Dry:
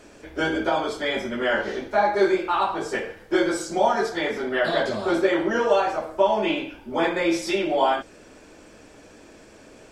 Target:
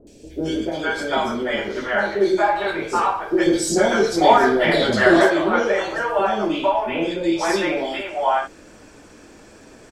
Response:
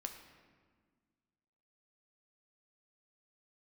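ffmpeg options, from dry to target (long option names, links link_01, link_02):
-filter_complex "[0:a]asettb=1/sr,asplit=3[link_01][link_02][link_03];[link_01]atrim=end=3.464[link_04];[link_02]atrim=start=3.46:end=5.23,asetpts=PTS-STARTPTS,afade=type=in:duration=0.004:curve=qsin,afade=type=out:start_time=1.766:duration=0.004:curve=qsin,acontrast=56[link_05];[link_03]atrim=start=5.226[link_06];[link_04][link_05]acrossfade=duration=0.004:curve1=hsin:curve2=qsin[link_07];[link_07][link_06]acrossfade=duration=0.004:curve1=qsin:curve2=hsin,asettb=1/sr,asplit=3[link_08][link_09][link_10];[link_08]atrim=end=6.974[link_11];[link_09]atrim=start=6.97:end=7.38,asetpts=PTS-STARTPTS,afade=type=in:duration=0.004:curve=qsin,afade=type=out:start_time=0.406:duration=0.004:curve=qsin,lowpass=9700[link_12];[link_10]atrim=start=7.376[link_13];[link_11][link_12]acrossfade=duration=0.004:curve1=hsin:curve2=qsin[link_14];[link_14][link_13]acrossfade=duration=0.004:curve1=qsin:curve2=hsin,acrossover=split=550|2800[link_15][link_16][link_17];[link_17]adelay=70[link_18];[link_16]adelay=450[link_19];[link_15][link_19][link_18]amix=inputs=3:normalize=0,volume=4dB"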